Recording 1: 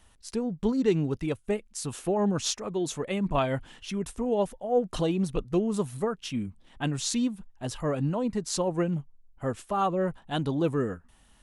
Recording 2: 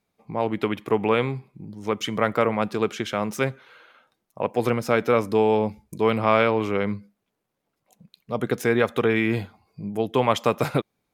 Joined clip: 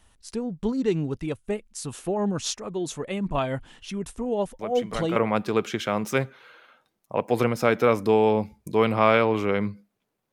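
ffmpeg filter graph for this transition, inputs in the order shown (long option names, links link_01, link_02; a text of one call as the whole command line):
ffmpeg -i cue0.wav -i cue1.wav -filter_complex "[1:a]asplit=2[link_01][link_02];[0:a]apad=whole_dur=10.32,atrim=end=10.32,atrim=end=5.162[link_03];[link_02]atrim=start=2.418:end=7.58[link_04];[link_01]atrim=start=1.85:end=2.42,asetpts=PTS-STARTPTS,volume=-10dB,afade=type=in:duration=0.004:curve=hsin,afade=type=out:start_time=0.566:duration=0.004:curve=hsin,adelay=4590[link_05];[link_03][link_04]acrossfade=duration=0.004:curve1=hsin:curve2=hsin[link_06];[link_06][link_05]amix=inputs=2:normalize=0" out.wav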